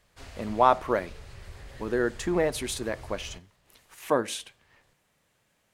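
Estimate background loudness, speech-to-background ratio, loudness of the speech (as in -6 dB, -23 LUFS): -47.0 LUFS, 19.0 dB, -28.0 LUFS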